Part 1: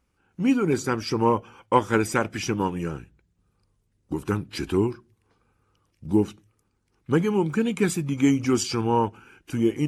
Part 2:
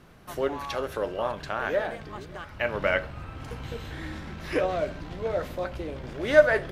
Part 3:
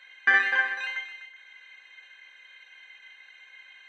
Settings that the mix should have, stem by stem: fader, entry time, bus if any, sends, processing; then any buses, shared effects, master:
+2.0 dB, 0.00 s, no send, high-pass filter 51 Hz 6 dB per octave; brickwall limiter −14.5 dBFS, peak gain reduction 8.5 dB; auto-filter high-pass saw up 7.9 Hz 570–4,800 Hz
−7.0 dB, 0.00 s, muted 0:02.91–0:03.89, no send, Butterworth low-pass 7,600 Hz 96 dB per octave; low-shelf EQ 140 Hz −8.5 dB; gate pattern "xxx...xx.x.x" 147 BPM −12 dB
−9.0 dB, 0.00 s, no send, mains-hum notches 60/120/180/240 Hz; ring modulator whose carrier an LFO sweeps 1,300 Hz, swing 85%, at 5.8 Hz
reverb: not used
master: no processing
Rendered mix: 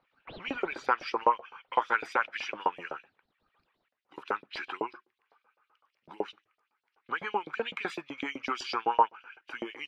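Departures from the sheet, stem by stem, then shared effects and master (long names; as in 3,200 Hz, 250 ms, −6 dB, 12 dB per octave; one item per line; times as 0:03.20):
stem 2: muted
stem 3 −9.0 dB → −20.5 dB
master: extra high-frequency loss of the air 340 metres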